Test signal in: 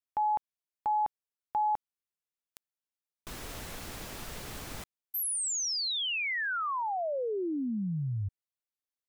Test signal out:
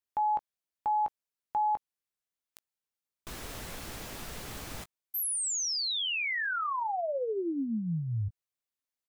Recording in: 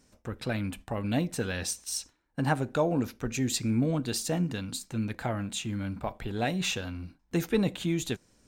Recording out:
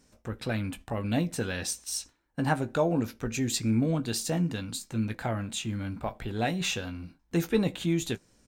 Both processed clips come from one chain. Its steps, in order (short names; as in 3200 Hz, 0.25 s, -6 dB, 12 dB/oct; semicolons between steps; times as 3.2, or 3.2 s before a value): doubler 18 ms -11 dB